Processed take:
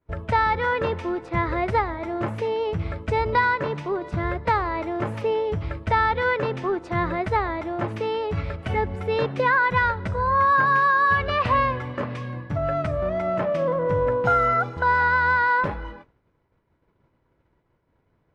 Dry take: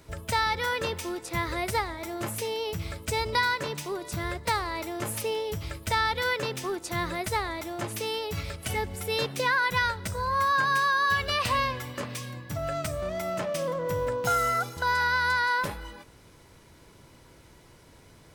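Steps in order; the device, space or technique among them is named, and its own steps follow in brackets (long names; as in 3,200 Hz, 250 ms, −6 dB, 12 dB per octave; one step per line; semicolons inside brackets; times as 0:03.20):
hearing-loss simulation (low-pass filter 1,700 Hz 12 dB per octave; downward expander −41 dBFS)
level +7 dB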